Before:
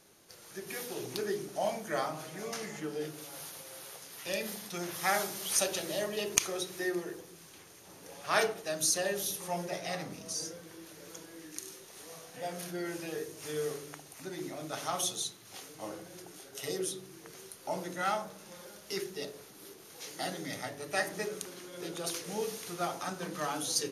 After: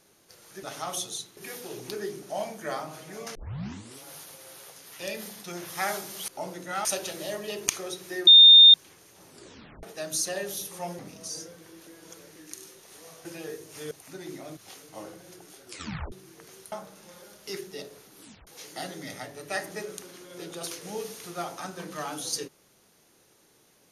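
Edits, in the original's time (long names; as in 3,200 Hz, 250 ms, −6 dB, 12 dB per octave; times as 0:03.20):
0:02.61: tape start 0.68 s
0:06.96–0:07.43: beep over 3,640 Hz −8.5 dBFS
0:07.97: tape stop 0.55 s
0:09.68–0:10.04: remove
0:10.92–0:11.41: reverse
0:12.30–0:12.93: remove
0:13.59–0:14.03: remove
0:14.69–0:15.43: move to 0:00.63
0:16.50: tape stop 0.48 s
0:17.58–0:18.15: move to 0:05.54
0:19.62: tape stop 0.28 s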